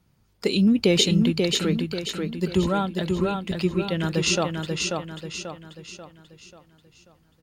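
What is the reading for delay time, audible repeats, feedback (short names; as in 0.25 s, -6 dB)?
0.538 s, 5, 44%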